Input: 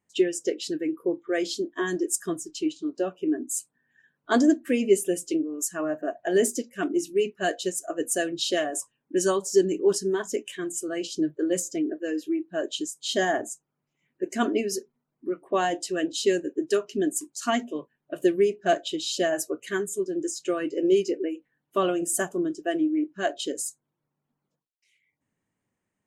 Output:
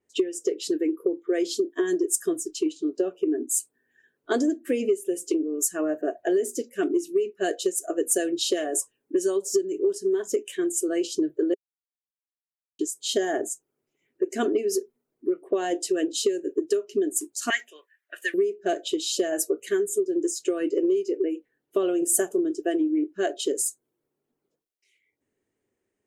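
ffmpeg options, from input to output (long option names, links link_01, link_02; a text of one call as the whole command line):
ffmpeg -i in.wav -filter_complex "[0:a]asettb=1/sr,asplit=3[link_01][link_02][link_03];[link_01]atrim=end=17.504[link_04];[link_02]atrim=start=17.5:end=18.34,asetpts=PTS-STARTPTS,afade=type=in:duration=0.004:curve=qsin,afade=type=out:start_time=0.836:duration=0.004:curve=qsin,highpass=frequency=1800:width_type=q:width=4.8[link_05];[link_03]atrim=start=18.336[link_06];[link_04][link_05]acrossfade=duration=0.004:curve1=hsin:curve2=qsin[link_07];[link_07][link_06]acrossfade=duration=0.004:curve1=qsin:curve2=hsin,asplit=3[link_08][link_09][link_10];[link_08]atrim=end=11.54,asetpts=PTS-STARTPTS,afade=type=out:start_time=11.536:duration=0.004:curve=hsin[link_11];[link_09]atrim=start=11.54:end=12.79,asetpts=PTS-STARTPTS,volume=0[link_12];[link_10]atrim=start=12.79,asetpts=PTS-STARTPTS,afade=type=in:duration=0.004:curve=hsin[link_13];[link_11][link_12][link_13]concat=n=3:v=0:a=1,equalizer=frequency=160:width_type=o:width=0.67:gain=-10,equalizer=frequency=400:width_type=o:width=0.67:gain=12,equalizer=frequency=1000:width_type=o:width=0.67:gain=-5,acompressor=threshold=-20dB:ratio=16,adynamicequalizer=threshold=0.00501:dfrequency=7000:dqfactor=0.7:tfrequency=7000:tqfactor=0.7:attack=5:release=100:ratio=0.375:range=4:mode=boostabove:tftype=highshelf" out.wav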